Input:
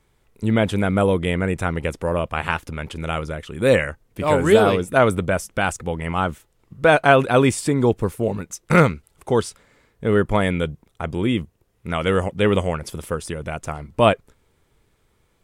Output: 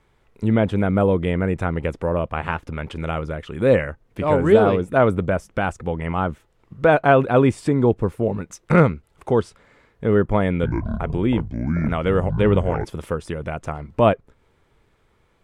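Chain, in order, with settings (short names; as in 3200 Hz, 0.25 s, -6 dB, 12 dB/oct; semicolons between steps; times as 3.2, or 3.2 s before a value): LPF 1100 Hz 6 dB/oct; 10.54–12.85 echoes that change speed 90 ms, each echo -7 st, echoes 3; mismatched tape noise reduction encoder only; gain +1 dB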